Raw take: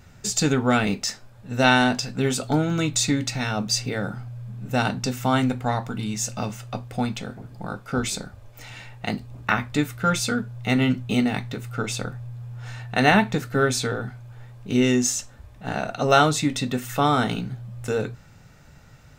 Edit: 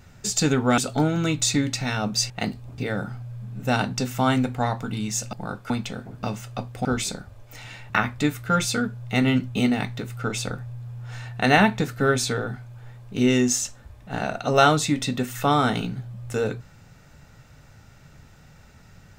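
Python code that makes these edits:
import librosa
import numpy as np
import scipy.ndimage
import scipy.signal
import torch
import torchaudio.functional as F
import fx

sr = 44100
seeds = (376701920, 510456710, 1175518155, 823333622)

y = fx.edit(x, sr, fx.cut(start_s=0.78, length_s=1.54),
    fx.swap(start_s=6.39, length_s=0.62, other_s=7.54, other_length_s=0.37),
    fx.move(start_s=8.96, length_s=0.48, to_s=3.84), tone=tone)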